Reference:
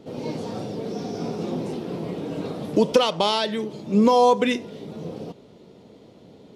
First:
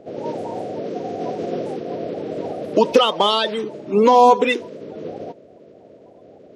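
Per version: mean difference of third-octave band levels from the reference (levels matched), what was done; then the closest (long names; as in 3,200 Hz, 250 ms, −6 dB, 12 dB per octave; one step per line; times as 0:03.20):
4.5 dB: spectral magnitudes quantised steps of 30 dB
bass and treble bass −12 dB, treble −8 dB
one half of a high-frequency compander decoder only
level +6.5 dB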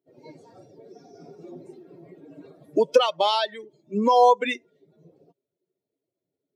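13.5 dB: spectral dynamics exaggerated over time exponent 2
high-pass filter 380 Hz 12 dB per octave
high-shelf EQ 5,600 Hz −10 dB
level +4 dB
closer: first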